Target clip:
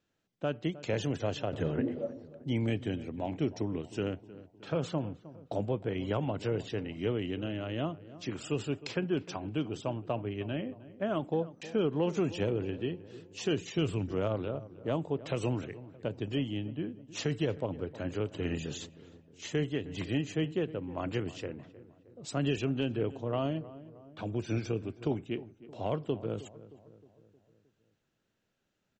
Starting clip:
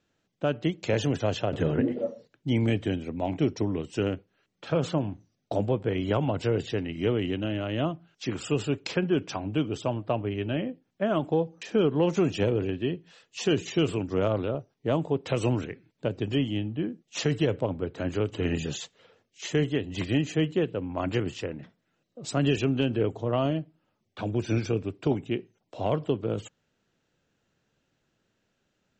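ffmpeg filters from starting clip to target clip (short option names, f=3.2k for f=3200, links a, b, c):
-filter_complex "[0:a]asettb=1/sr,asplit=3[a][b][c];[a]atrim=end=13.564[d];[b]atrim=start=13.56:end=14.12,asetpts=PTS-STARTPTS,afade=t=in:d=0.004:c=qsin,afade=t=out:st=0.556:d=0.004:c=qsin,asubboost=boost=10.5:cutoff=230[e];[c]atrim=start=14.116[f];[d][e]acrossfade=d=0.004:c1=hsin:c2=qsin[g];[g][f]acrossfade=d=0.004:c1=qsin:c2=hsin,asplit=2[h][i];[i]adelay=311,lowpass=f=1.4k:p=1,volume=-16.5dB,asplit=2[j][k];[k]adelay=311,lowpass=f=1.4k:p=1,volume=0.54,asplit=2[l][m];[m]adelay=311,lowpass=f=1.4k:p=1,volume=0.54,asplit=2[n][o];[o]adelay=311,lowpass=f=1.4k:p=1,volume=0.54,asplit=2[p][q];[q]adelay=311,lowpass=f=1.4k:p=1,volume=0.54[r];[j][l][n][p][r]amix=inputs=5:normalize=0[s];[h][s]amix=inputs=2:normalize=0,volume=-6dB"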